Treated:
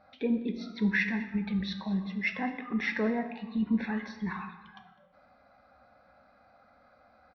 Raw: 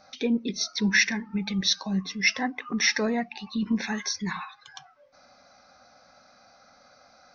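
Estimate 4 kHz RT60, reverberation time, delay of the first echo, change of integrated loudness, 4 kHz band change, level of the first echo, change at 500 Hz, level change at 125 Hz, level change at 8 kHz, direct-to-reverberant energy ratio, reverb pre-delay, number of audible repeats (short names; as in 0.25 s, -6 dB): 0.80 s, 1.2 s, 0.204 s, -5.5 dB, -16.5 dB, -19.5 dB, -3.0 dB, -2.0 dB, n/a, 7.0 dB, 4 ms, 1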